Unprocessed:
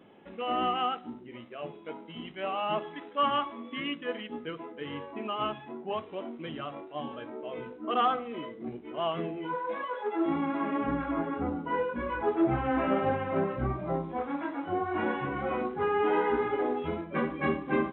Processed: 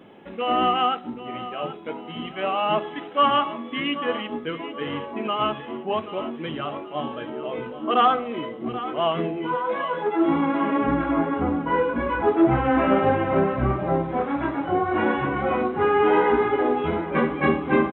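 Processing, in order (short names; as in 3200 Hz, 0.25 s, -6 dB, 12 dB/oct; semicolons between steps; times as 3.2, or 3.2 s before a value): feedback echo 0.782 s, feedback 42%, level -13.5 dB; gain +8 dB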